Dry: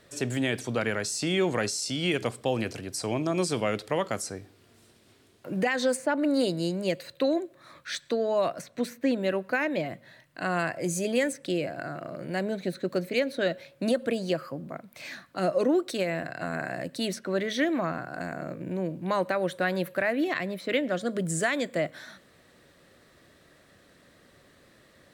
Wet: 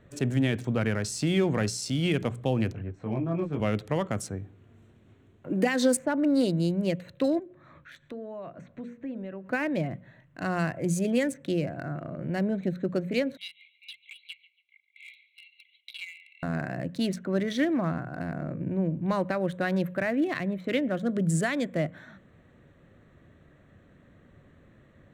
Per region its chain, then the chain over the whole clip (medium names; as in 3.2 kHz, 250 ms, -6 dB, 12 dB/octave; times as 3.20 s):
2.72–3.60 s: low-pass 2.5 kHz + detune thickener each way 11 cents
5.50–5.97 s: resonant high-pass 290 Hz, resonance Q 2 + treble shelf 5.7 kHz +10 dB
7.39–9.46 s: hum notches 60/120/180/240/300/360/420/480/540 Hz + compression 2:1, threshold -44 dBFS + distance through air 56 m
13.37–16.43 s: brick-wall FIR band-pass 2–4.3 kHz + comb 1.8 ms, depth 81% + feedback delay 141 ms, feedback 36%, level -14.5 dB
whole clip: local Wiener filter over 9 samples; tone controls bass +12 dB, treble +1 dB; hum notches 60/120/180 Hz; trim -2.5 dB